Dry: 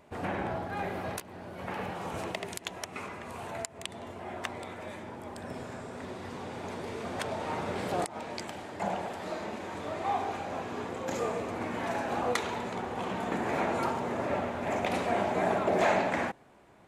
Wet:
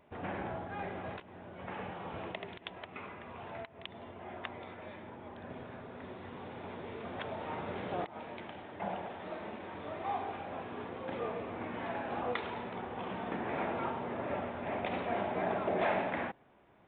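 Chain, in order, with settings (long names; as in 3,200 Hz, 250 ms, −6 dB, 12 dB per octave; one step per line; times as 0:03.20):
downsampling to 8,000 Hz
level −5.5 dB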